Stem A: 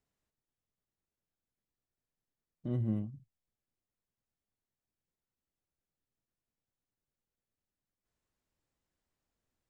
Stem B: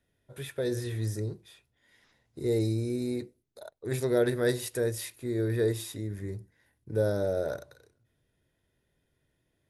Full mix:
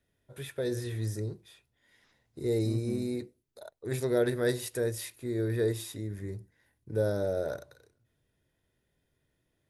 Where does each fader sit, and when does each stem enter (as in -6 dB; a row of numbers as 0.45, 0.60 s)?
-5.0, -1.5 dB; 0.00, 0.00 s